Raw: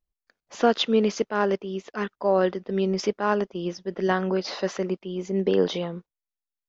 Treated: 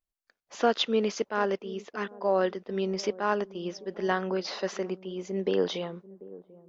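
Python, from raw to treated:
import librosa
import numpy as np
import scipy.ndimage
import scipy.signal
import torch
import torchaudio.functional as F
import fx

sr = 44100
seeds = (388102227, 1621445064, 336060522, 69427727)

y = fx.low_shelf(x, sr, hz=250.0, db=-7.5)
y = fx.echo_wet_lowpass(y, sr, ms=740, feedback_pct=35, hz=550.0, wet_db=-17.5)
y = y * librosa.db_to_amplitude(-2.5)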